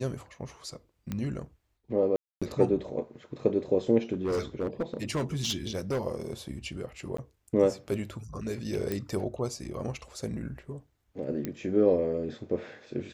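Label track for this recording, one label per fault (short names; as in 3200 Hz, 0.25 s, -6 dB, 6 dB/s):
1.120000	1.120000	pop -20 dBFS
2.160000	2.420000	gap 0.256 s
4.140000	6.010000	clipped -25 dBFS
7.170000	7.180000	gap 14 ms
8.920000	8.920000	pop -17 dBFS
11.450000	11.450000	pop -18 dBFS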